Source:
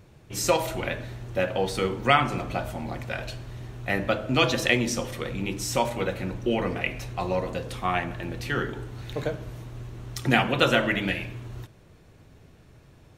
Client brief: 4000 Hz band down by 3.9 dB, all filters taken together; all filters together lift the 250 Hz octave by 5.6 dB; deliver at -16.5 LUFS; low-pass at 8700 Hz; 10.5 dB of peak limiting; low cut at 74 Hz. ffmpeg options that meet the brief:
-af "highpass=74,lowpass=8.7k,equalizer=f=250:t=o:g=7,equalizer=f=4k:t=o:g=-5.5,volume=12dB,alimiter=limit=-3.5dB:level=0:latency=1"

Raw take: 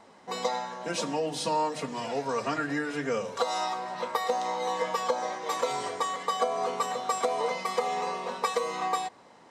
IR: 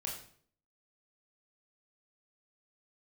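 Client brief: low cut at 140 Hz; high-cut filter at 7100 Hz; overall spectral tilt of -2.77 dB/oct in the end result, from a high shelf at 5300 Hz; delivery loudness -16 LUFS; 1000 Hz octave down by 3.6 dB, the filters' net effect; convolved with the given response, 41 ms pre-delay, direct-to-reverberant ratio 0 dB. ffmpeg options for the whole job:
-filter_complex "[0:a]highpass=140,lowpass=7.1k,equalizer=f=1k:t=o:g=-5,highshelf=f=5.3k:g=5,asplit=2[a][b];[1:a]atrim=start_sample=2205,adelay=41[c];[b][c]afir=irnorm=-1:irlink=0,volume=-0.5dB[d];[a][d]amix=inputs=2:normalize=0,volume=14dB"

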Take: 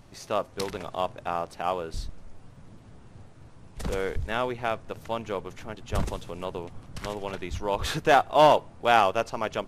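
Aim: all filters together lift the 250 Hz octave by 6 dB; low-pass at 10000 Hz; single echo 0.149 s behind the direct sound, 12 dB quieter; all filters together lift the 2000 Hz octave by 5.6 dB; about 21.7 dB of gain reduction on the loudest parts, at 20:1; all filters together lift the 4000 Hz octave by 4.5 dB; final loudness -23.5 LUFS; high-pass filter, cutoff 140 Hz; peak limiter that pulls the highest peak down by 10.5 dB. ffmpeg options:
-af "highpass=140,lowpass=10k,equalizer=f=250:t=o:g=8.5,equalizer=f=2k:t=o:g=7,equalizer=f=4k:t=o:g=3,acompressor=threshold=-32dB:ratio=20,alimiter=level_in=3dB:limit=-24dB:level=0:latency=1,volume=-3dB,aecho=1:1:149:0.251,volume=18dB"

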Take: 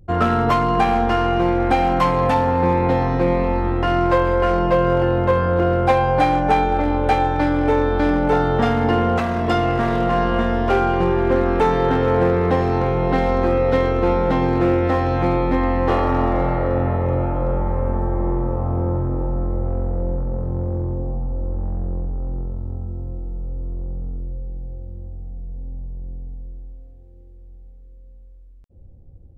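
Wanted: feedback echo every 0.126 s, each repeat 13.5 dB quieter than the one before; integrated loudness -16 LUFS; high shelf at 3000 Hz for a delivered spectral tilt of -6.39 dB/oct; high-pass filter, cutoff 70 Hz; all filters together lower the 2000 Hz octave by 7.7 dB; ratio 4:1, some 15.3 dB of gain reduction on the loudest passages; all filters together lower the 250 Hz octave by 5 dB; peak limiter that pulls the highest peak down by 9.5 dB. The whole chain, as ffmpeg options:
-af "highpass=70,equalizer=f=250:t=o:g=-7,equalizer=f=2k:t=o:g=-9,highshelf=f=3k:g=-4.5,acompressor=threshold=-34dB:ratio=4,alimiter=level_in=7.5dB:limit=-24dB:level=0:latency=1,volume=-7.5dB,aecho=1:1:126|252:0.211|0.0444,volume=23.5dB"

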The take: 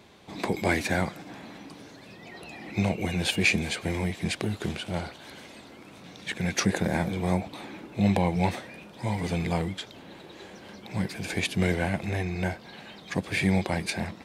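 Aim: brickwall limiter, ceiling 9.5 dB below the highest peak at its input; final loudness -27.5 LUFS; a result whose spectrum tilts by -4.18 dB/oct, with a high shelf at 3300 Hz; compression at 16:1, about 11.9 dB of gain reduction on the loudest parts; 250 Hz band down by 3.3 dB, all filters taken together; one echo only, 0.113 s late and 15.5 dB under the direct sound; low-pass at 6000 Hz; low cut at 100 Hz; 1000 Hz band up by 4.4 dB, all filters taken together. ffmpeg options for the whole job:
-af "highpass=100,lowpass=6k,equalizer=f=250:t=o:g=-5,equalizer=f=1k:t=o:g=7,highshelf=f=3.3k:g=-8,acompressor=threshold=-31dB:ratio=16,alimiter=level_in=1.5dB:limit=-24dB:level=0:latency=1,volume=-1.5dB,aecho=1:1:113:0.168,volume=11.5dB"

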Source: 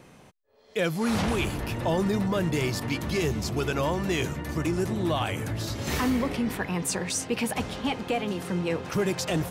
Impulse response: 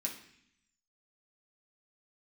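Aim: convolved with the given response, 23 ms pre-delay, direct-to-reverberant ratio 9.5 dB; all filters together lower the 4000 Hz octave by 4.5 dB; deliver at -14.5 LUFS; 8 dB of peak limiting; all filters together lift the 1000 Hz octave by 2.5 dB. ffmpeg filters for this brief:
-filter_complex "[0:a]equalizer=f=1k:t=o:g=3.5,equalizer=f=4k:t=o:g=-6.5,alimiter=limit=-23.5dB:level=0:latency=1,asplit=2[a][b];[1:a]atrim=start_sample=2205,adelay=23[c];[b][c]afir=irnorm=-1:irlink=0,volume=-10dB[d];[a][d]amix=inputs=2:normalize=0,volume=17dB"

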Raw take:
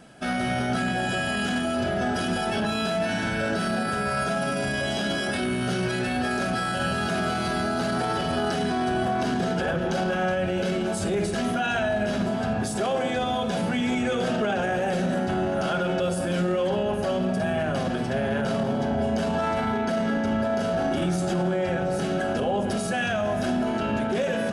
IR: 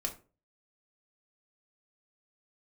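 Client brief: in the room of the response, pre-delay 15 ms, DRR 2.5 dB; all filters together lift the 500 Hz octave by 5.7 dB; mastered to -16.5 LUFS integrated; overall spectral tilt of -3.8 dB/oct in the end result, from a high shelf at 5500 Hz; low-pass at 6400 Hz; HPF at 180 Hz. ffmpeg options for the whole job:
-filter_complex "[0:a]highpass=180,lowpass=6.4k,equalizer=f=500:t=o:g=7.5,highshelf=f=5.5k:g=7,asplit=2[a][b];[1:a]atrim=start_sample=2205,adelay=15[c];[b][c]afir=irnorm=-1:irlink=0,volume=-4.5dB[d];[a][d]amix=inputs=2:normalize=0,volume=3dB"

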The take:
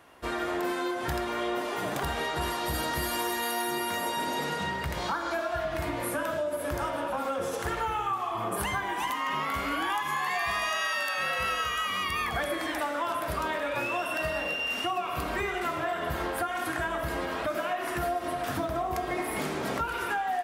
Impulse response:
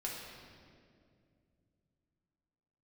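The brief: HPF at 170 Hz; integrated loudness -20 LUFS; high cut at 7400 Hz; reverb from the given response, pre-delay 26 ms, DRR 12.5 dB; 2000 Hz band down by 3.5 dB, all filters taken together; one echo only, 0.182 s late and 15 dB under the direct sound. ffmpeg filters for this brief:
-filter_complex "[0:a]highpass=170,lowpass=7.4k,equalizer=f=2k:t=o:g=-4.5,aecho=1:1:182:0.178,asplit=2[a][b];[1:a]atrim=start_sample=2205,adelay=26[c];[b][c]afir=irnorm=-1:irlink=0,volume=-14dB[d];[a][d]amix=inputs=2:normalize=0,volume=11.5dB"

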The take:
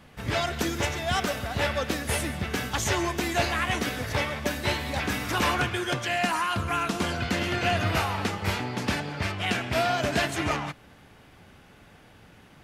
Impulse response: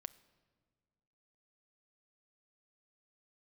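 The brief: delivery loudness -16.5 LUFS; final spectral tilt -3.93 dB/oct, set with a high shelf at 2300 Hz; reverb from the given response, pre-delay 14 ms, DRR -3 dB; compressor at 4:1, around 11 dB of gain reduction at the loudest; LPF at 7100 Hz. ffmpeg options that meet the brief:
-filter_complex "[0:a]lowpass=7.1k,highshelf=f=2.3k:g=-4,acompressor=threshold=-36dB:ratio=4,asplit=2[a][b];[1:a]atrim=start_sample=2205,adelay=14[c];[b][c]afir=irnorm=-1:irlink=0,volume=7.5dB[d];[a][d]amix=inputs=2:normalize=0,volume=16.5dB"

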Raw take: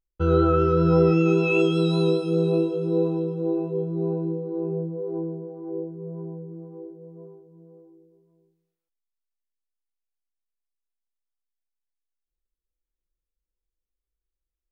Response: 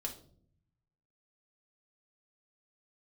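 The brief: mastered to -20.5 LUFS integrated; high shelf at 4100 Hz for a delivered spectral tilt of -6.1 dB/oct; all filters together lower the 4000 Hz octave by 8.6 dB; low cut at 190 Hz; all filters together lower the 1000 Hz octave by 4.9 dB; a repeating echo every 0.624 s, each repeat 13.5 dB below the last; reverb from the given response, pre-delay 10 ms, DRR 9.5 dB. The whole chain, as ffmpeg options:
-filter_complex "[0:a]highpass=190,equalizer=f=1k:t=o:g=-6.5,equalizer=f=4k:t=o:g=-7.5,highshelf=f=4.1k:g=-4,aecho=1:1:624|1248:0.211|0.0444,asplit=2[a][b];[1:a]atrim=start_sample=2205,adelay=10[c];[b][c]afir=irnorm=-1:irlink=0,volume=-9dB[d];[a][d]amix=inputs=2:normalize=0,volume=4.5dB"

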